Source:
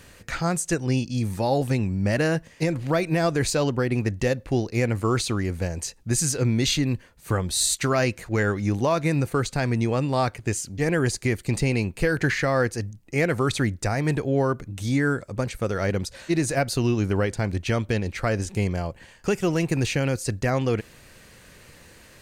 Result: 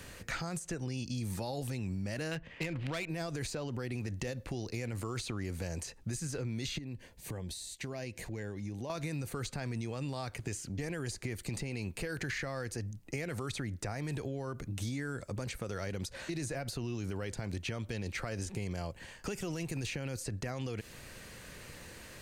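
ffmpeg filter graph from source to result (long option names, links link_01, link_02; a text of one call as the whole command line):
ffmpeg -i in.wav -filter_complex "[0:a]asettb=1/sr,asplit=3[link_01][link_02][link_03];[link_01]atrim=end=2.314[link_04];[link_02]atrim=start=2.31:end=3.09,asetpts=PTS-STARTPTS,afade=type=in:duration=0.004:curve=qsin,afade=type=out:start_time=0.776:duration=0.004:curve=qsin,equalizer=frequency=2900:width_type=o:width=1.6:gain=14.5,asoftclip=type=hard:threshold=-13dB,adynamicsmooth=sensitivity=1.5:basefreq=1500[link_05];[link_03]atrim=start=3.086[link_06];[link_04][link_05]acrossfade=duration=0.004:curve1=hsin:curve2=qsin[link_07];[link_07][link_06]acrossfade=duration=0.004:curve1=qsin:curve2=hsin,asettb=1/sr,asplit=3[link_08][link_09][link_10];[link_08]atrim=end=6.784[link_11];[link_09]atrim=start=6.78:end=8.9,asetpts=PTS-STARTPTS,afade=type=in:duration=0.004:curve=qsin,afade=type=out:start_time=2.116:duration=0.004:curve=qsin,equalizer=frequency=1300:width=3.4:gain=-14.5,acompressor=threshold=-38dB:ratio=4:attack=3.2:release=140:knee=1:detection=peak[link_12];[link_10]atrim=start=8.896[link_13];[link_11][link_12]acrossfade=duration=0.004:curve1=hsin:curve2=qsin[link_14];[link_14][link_13]acrossfade=duration=0.004:curve1=qsin:curve2=hsin,alimiter=limit=-21.5dB:level=0:latency=1:release=57,acrossover=split=98|2900[link_15][link_16][link_17];[link_15]acompressor=threshold=-46dB:ratio=4[link_18];[link_16]acompressor=threshold=-37dB:ratio=4[link_19];[link_17]acompressor=threshold=-44dB:ratio=4[link_20];[link_18][link_19][link_20]amix=inputs=3:normalize=0" out.wav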